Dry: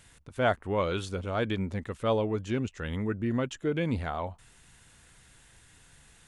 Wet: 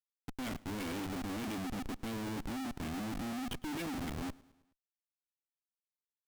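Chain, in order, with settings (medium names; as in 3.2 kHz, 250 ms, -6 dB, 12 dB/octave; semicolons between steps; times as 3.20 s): vowel filter i; level-controlled noise filter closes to 350 Hz, open at -37.5 dBFS; in parallel at +2 dB: compression 8:1, threshold -46 dBFS, peak gain reduction 15.5 dB; on the sum: de-hum 120.6 Hz, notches 3; Schmitt trigger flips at -47.5 dBFS; feedback delay 106 ms, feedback 55%, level -23 dB; trim +2.5 dB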